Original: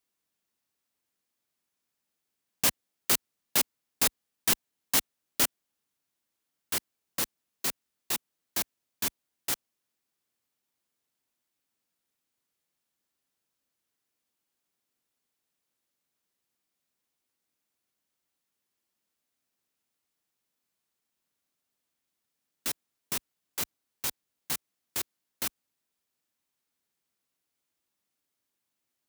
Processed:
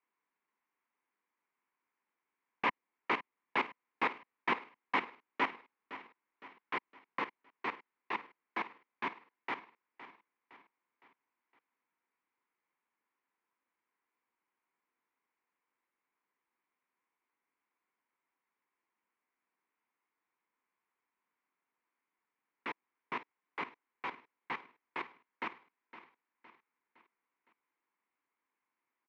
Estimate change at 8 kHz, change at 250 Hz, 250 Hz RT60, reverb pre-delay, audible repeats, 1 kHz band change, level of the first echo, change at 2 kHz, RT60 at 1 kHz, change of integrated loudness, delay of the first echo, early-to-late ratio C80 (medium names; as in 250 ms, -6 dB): under -40 dB, -3.0 dB, no reverb, no reverb, 4, +5.0 dB, -14.5 dB, +0.5 dB, no reverb, -9.0 dB, 512 ms, no reverb